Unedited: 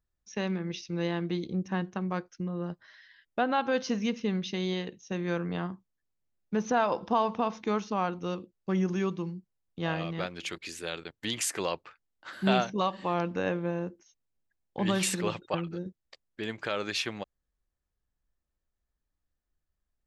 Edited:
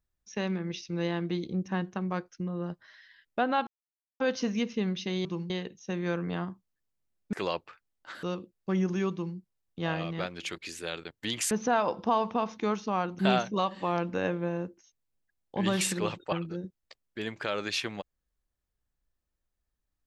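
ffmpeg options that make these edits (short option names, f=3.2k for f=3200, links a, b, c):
-filter_complex "[0:a]asplit=8[a][b][c][d][e][f][g][h];[a]atrim=end=3.67,asetpts=PTS-STARTPTS,afade=t=out:st=3.666:d=0.004:c=hsin,apad=pad_dur=0.53[i];[b]atrim=start=3.67:end=4.722,asetpts=PTS-STARTPTS,afade=t=in:d=0.004:c=hsin[j];[c]atrim=start=9.118:end=9.372[k];[d]atrim=start=4.718:end=6.552[l];[e]atrim=start=11.508:end=12.412[m];[f]atrim=start=8.228:end=11.512[n];[g]atrim=start=6.548:end=8.232[o];[h]atrim=start=12.408[p];[i][j]concat=n=2:v=0:a=1[q];[q][k]acrossfade=d=0.004:c1=hsin:c2=hsin[r];[r][l]acrossfade=d=0.004:c1=hsin:c2=hsin[s];[s][m]acrossfade=d=0.004:c1=hsin:c2=hsin[t];[t][n]acrossfade=d=0.004:c1=hsin:c2=hsin[u];[u][o]acrossfade=d=0.004:c1=hsin:c2=hsin[v];[v][p]acrossfade=d=0.004:c1=hsin:c2=hsin"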